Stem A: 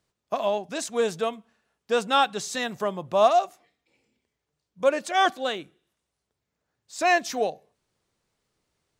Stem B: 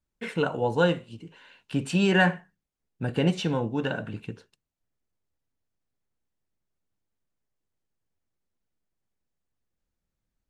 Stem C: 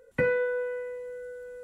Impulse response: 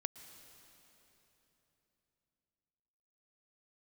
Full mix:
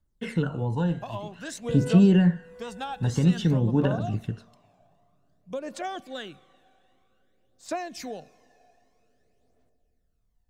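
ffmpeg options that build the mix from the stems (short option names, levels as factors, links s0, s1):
-filter_complex "[0:a]acompressor=threshold=0.0794:ratio=6,adelay=700,volume=0.355,asplit=2[s0][s1];[s1]volume=0.335[s2];[1:a]bandreject=f=2400:w=6,bandreject=f=230.7:t=h:w=4,bandreject=f=461.4:t=h:w=4,bandreject=f=692.1:t=h:w=4,bandreject=f=922.8:t=h:w=4,bandreject=f=1153.5:t=h:w=4,bandreject=f=1384.2:t=h:w=4,bandreject=f=1614.9:t=h:w=4,bandreject=f=1845.6:t=h:w=4,bandreject=f=2076.3:t=h:w=4,bandreject=f=2307:t=h:w=4,bandreject=f=2537.7:t=h:w=4,bandreject=f=2768.4:t=h:w=4,bandreject=f=2999.1:t=h:w=4,bandreject=f=3229.8:t=h:w=4,bandreject=f=3460.5:t=h:w=4,bandreject=f=3691.2:t=h:w=4,bandreject=f=3921.9:t=h:w=4,bandreject=f=4152.6:t=h:w=4,bandreject=f=4383.3:t=h:w=4,bandreject=f=4614:t=h:w=4,bandreject=f=4844.7:t=h:w=4,bandreject=f=5075.4:t=h:w=4,bandreject=f=5306.1:t=h:w=4,bandreject=f=5536.8:t=h:w=4,bandreject=f=5767.5:t=h:w=4,bandreject=f=5998.2:t=h:w=4,bandreject=f=6228.9:t=h:w=4,bandreject=f=6459.6:t=h:w=4,bandreject=f=6690.3:t=h:w=4,volume=0.841,asplit=2[s3][s4];[s4]volume=0.0708[s5];[2:a]adelay=1500,volume=0.596,afade=t=in:st=2.42:d=0.21:silence=0.398107[s6];[3:a]atrim=start_sample=2205[s7];[s2][s5]amix=inputs=2:normalize=0[s8];[s8][s7]afir=irnorm=-1:irlink=0[s9];[s0][s3][s6][s9]amix=inputs=4:normalize=0,lowshelf=f=140:g=8,acrossover=split=350[s10][s11];[s11]acompressor=threshold=0.0251:ratio=10[s12];[s10][s12]amix=inputs=2:normalize=0,aphaser=in_gain=1:out_gain=1:delay=1.3:decay=0.51:speed=0.52:type=triangular"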